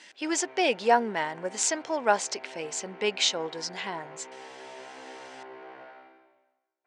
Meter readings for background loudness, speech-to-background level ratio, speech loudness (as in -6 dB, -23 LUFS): -47.0 LUFS, 19.0 dB, -28.0 LUFS